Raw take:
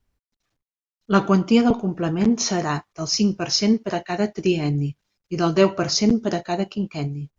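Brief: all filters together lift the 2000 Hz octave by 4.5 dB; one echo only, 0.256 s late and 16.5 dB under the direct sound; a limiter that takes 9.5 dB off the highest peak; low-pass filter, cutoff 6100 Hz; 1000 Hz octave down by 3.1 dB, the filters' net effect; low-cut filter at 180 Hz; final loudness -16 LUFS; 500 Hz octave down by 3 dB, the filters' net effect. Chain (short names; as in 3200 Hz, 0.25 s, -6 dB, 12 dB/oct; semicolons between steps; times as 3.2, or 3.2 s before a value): HPF 180 Hz; LPF 6100 Hz; bell 500 Hz -3 dB; bell 1000 Hz -6 dB; bell 2000 Hz +8 dB; limiter -13.5 dBFS; echo 0.256 s -16.5 dB; gain +9.5 dB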